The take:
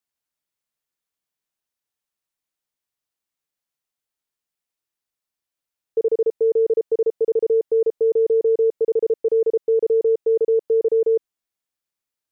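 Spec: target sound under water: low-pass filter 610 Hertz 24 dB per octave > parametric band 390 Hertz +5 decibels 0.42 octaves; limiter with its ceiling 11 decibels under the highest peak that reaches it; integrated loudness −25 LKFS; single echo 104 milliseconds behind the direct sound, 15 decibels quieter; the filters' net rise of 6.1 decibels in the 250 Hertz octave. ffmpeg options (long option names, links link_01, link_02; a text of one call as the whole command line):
ffmpeg -i in.wav -af "equalizer=frequency=250:width_type=o:gain=5.5,alimiter=limit=-23dB:level=0:latency=1,lowpass=frequency=610:width=0.5412,lowpass=frequency=610:width=1.3066,equalizer=frequency=390:width_type=o:width=0.42:gain=5,aecho=1:1:104:0.178,volume=2dB" out.wav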